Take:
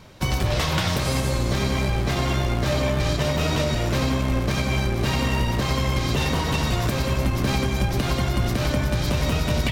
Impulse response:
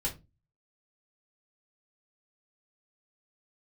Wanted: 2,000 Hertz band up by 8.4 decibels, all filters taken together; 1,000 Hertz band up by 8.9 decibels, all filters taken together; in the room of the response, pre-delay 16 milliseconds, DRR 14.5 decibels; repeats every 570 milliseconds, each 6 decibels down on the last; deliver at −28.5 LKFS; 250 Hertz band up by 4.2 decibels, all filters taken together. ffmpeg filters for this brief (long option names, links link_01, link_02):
-filter_complex "[0:a]equalizer=frequency=250:width_type=o:gain=5,equalizer=frequency=1000:width_type=o:gain=8.5,equalizer=frequency=2000:width_type=o:gain=8,aecho=1:1:570|1140|1710|2280|2850|3420:0.501|0.251|0.125|0.0626|0.0313|0.0157,asplit=2[link_01][link_02];[1:a]atrim=start_sample=2205,adelay=16[link_03];[link_02][link_03]afir=irnorm=-1:irlink=0,volume=-18dB[link_04];[link_01][link_04]amix=inputs=2:normalize=0,volume=-11dB"